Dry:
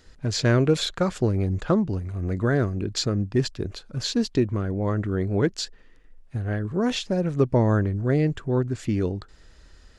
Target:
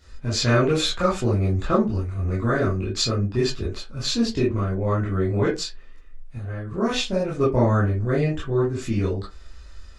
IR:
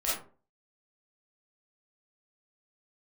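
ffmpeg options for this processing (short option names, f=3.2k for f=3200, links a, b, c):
-filter_complex "[0:a]asettb=1/sr,asplit=3[a][b][c];[a]atrim=end=5.594[d];[b]atrim=start=5.59:end=6.7,asetpts=PTS-STARTPTS,afade=t=in:d=0.004:c=qsin,afade=t=out:st=1.106:d=0.004:c=qsin,acompressor=threshold=-32dB:ratio=3[e];[c]atrim=start=6.696[f];[d][e]acrossfade=d=0.004:c1=hsin:c2=qsin[g];[g][f]acrossfade=d=0.004:c1=qsin:c2=hsin[h];[1:a]atrim=start_sample=2205,asetrate=83790,aresample=44100[i];[h][i]afir=irnorm=-1:irlink=0,volume=2dB"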